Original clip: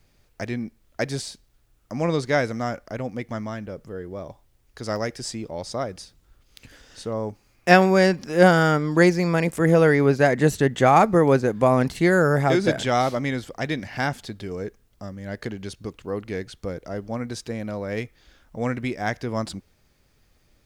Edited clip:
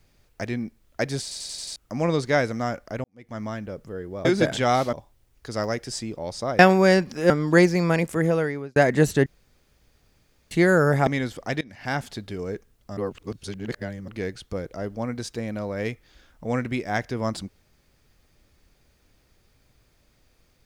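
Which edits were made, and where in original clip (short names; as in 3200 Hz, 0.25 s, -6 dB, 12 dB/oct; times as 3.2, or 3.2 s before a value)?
1.22 stutter in place 0.09 s, 6 plays
3.04–3.44 fade in quadratic
5.91–7.71 cut
8.42–8.74 cut
9.38–10.2 fade out
10.7–11.95 room tone
12.51–13.19 move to 4.25
13.73–14.16 fade in, from -23.5 dB
15.09–16.2 reverse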